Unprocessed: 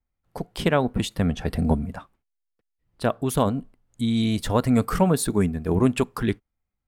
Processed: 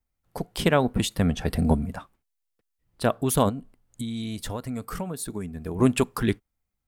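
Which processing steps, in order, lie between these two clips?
high-shelf EQ 5,600 Hz +6.5 dB
0:03.49–0:05.79: downward compressor 6 to 1, threshold −30 dBFS, peak gain reduction 15 dB

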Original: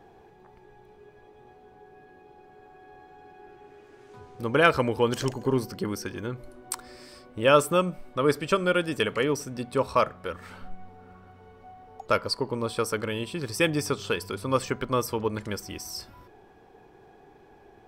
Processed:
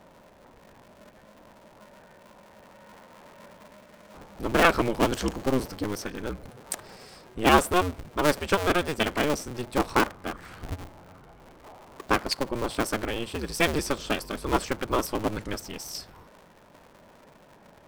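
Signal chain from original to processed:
sub-harmonics by changed cycles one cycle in 2, inverted

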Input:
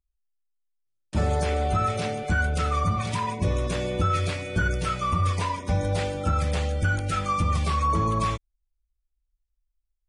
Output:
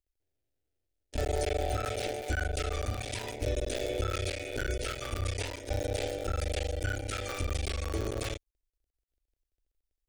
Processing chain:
sub-harmonics by changed cycles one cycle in 3, muted
low-shelf EQ 230 Hz −4.5 dB
phaser with its sweep stopped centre 440 Hz, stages 4

